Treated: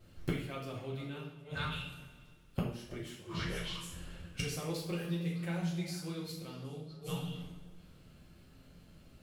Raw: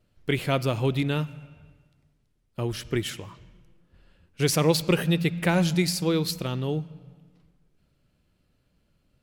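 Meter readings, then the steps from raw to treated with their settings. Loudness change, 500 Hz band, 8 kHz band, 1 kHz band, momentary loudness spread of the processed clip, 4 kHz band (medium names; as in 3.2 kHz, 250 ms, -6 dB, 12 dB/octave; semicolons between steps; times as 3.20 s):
-14.0 dB, -15.5 dB, -14.0 dB, -12.5 dB, 22 LU, -11.5 dB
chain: repeats whose band climbs or falls 153 ms, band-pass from 190 Hz, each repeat 1.4 oct, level -6 dB; inverted gate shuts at -27 dBFS, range -27 dB; two-slope reverb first 0.57 s, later 2 s, from -18 dB, DRR -4.5 dB; trim +4.5 dB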